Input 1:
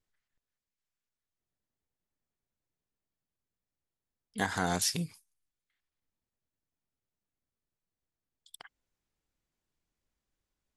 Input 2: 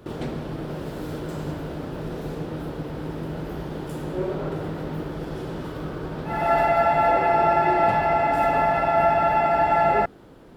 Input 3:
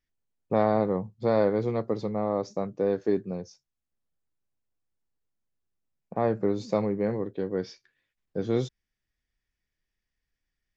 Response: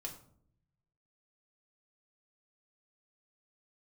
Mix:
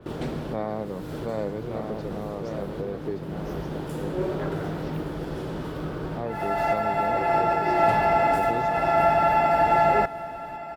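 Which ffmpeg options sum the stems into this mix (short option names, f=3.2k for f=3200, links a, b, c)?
-filter_complex "[0:a]lowpass=f=3.2k:w=0.5412,lowpass=f=3.2k:w=1.3066,volume=-10.5dB[a];[1:a]adynamicequalizer=threshold=0.00708:dfrequency=4400:dqfactor=0.7:tfrequency=4400:tqfactor=0.7:attack=5:release=100:ratio=0.375:range=3:mode=boostabove:tftype=highshelf,volume=-0.5dB,asplit=2[b][c];[c]volume=-15.5dB[d];[2:a]volume=-7dB,asplit=3[e][f][g];[f]volume=-5.5dB[h];[g]apad=whole_len=465769[i];[b][i]sidechaincompress=threshold=-37dB:ratio=3:attack=36:release=390[j];[d][h]amix=inputs=2:normalize=0,aecho=0:1:1173:1[k];[a][j][e][k]amix=inputs=4:normalize=0"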